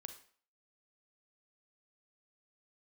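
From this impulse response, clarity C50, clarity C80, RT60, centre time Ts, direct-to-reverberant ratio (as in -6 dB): 9.5 dB, 14.0 dB, 0.50 s, 11 ms, 7.0 dB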